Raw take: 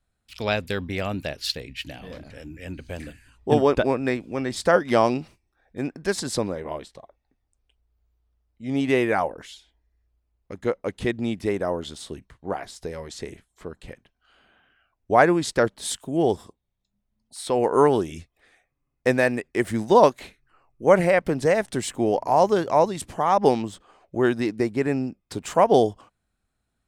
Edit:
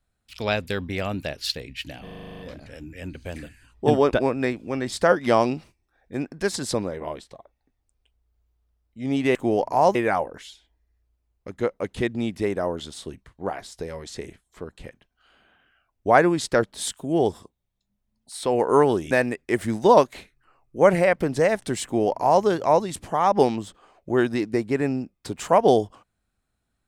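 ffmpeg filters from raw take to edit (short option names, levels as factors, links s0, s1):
-filter_complex "[0:a]asplit=13[s0][s1][s2][s3][s4][s5][s6][s7][s8][s9][s10][s11][s12];[s0]atrim=end=2.072[s13];[s1]atrim=start=2.028:end=2.072[s14];[s2]atrim=start=2.028:end=2.072[s15];[s3]atrim=start=2.028:end=2.072[s16];[s4]atrim=start=2.028:end=2.072[s17];[s5]atrim=start=2.028:end=2.072[s18];[s6]atrim=start=2.028:end=2.072[s19];[s7]atrim=start=2.028:end=2.072[s20];[s8]atrim=start=2.028:end=2.072[s21];[s9]atrim=start=2.028:end=8.992[s22];[s10]atrim=start=21.898:end=22.502[s23];[s11]atrim=start=8.988:end=18.152[s24];[s12]atrim=start=19.168[s25];[s13][s14]acrossfade=d=0.004:c1=hsin:c2=hsin[s26];[s26][s15]acrossfade=d=0.004:c1=hsin:c2=hsin[s27];[s27][s16]acrossfade=d=0.004:c1=hsin:c2=hsin[s28];[s28][s17]acrossfade=d=0.004:c1=hsin:c2=hsin[s29];[s29][s18]acrossfade=d=0.004:c1=hsin:c2=hsin[s30];[s30][s19]acrossfade=d=0.004:c1=hsin:c2=hsin[s31];[s31][s20]acrossfade=d=0.004:c1=hsin:c2=hsin[s32];[s32][s21]acrossfade=d=0.004:c1=hsin:c2=hsin[s33];[s33][s22]acrossfade=d=0.004:c1=hsin:c2=hsin[s34];[s34][s23]acrossfade=d=0.004:c1=hsin:c2=hsin[s35];[s35][s24]acrossfade=d=0.004:c1=hsin:c2=hsin[s36];[s36][s25]acrossfade=d=0.004:c1=hsin:c2=hsin"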